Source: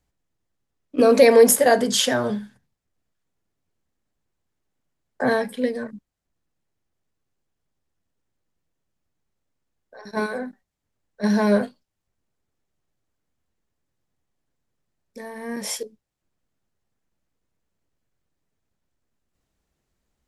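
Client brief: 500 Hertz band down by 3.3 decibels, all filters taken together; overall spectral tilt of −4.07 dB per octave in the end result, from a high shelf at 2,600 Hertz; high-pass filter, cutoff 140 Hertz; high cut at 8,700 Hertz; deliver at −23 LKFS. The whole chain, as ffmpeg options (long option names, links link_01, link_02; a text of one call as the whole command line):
ffmpeg -i in.wav -af "highpass=140,lowpass=8700,equalizer=frequency=500:width_type=o:gain=-3.5,highshelf=frequency=2600:gain=-4.5,volume=-0.5dB" out.wav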